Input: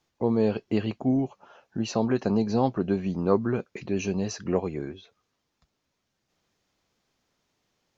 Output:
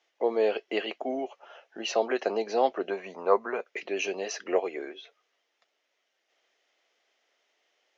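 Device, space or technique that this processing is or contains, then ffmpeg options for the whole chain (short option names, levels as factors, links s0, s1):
phone speaker on a table: -filter_complex "[0:a]asettb=1/sr,asplit=3[s0][s1][s2];[s0]atrim=end=2.904[s3];[s1]atrim=start=2.9:end=3.66,asetpts=PTS-STARTPTS,afade=t=in:d=0.004:c=qsin,afade=t=out:st=0.756:d=0.004:c=qsin,equalizer=f=315:t=o:w=0.33:g=-12,equalizer=f=1000:t=o:w=0.33:g=9,equalizer=f=3150:t=o:w=0.33:g=-11,equalizer=f=5000:t=o:w=0.33:g=-7[s4];[s2]atrim=start=3.656[s5];[s3][s4]acrossfade=d=0.004:c1=hsin:c2=qsin[s6];[s6][s5]acrossfade=d=0.004:c1=qsin:c2=hsin,highpass=f=400:w=0.5412,highpass=f=400:w=1.3066,equalizer=f=660:t=q:w=4:g=4,equalizer=f=1000:t=q:w=4:g=-5,equalizer=f=2000:t=q:w=4:g=7,equalizer=f=3000:t=q:w=4:g=6,equalizer=f=4400:t=q:w=4:g=-4,lowpass=f=6500:w=0.5412,lowpass=f=6500:w=1.3066,volume=1.26"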